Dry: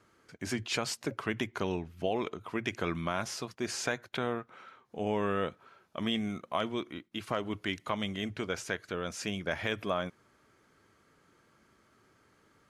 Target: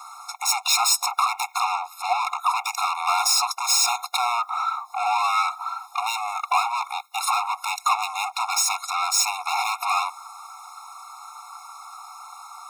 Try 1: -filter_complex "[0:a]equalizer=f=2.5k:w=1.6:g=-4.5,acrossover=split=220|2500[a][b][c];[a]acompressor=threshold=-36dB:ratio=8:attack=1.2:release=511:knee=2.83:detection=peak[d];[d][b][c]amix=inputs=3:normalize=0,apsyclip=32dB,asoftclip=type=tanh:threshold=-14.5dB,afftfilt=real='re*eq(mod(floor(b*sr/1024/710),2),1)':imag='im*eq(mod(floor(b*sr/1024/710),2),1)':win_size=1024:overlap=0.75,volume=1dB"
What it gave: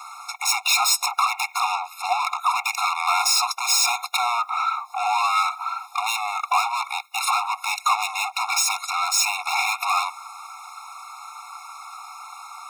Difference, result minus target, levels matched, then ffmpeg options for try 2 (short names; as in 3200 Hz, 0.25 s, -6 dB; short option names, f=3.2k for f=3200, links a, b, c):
2000 Hz band +3.0 dB
-filter_complex "[0:a]equalizer=f=2.5k:w=1.6:g=-15,acrossover=split=220|2500[a][b][c];[a]acompressor=threshold=-36dB:ratio=8:attack=1.2:release=511:knee=2.83:detection=peak[d];[d][b][c]amix=inputs=3:normalize=0,apsyclip=32dB,asoftclip=type=tanh:threshold=-14.5dB,afftfilt=real='re*eq(mod(floor(b*sr/1024/710),2),1)':imag='im*eq(mod(floor(b*sr/1024/710),2),1)':win_size=1024:overlap=0.75,volume=1dB"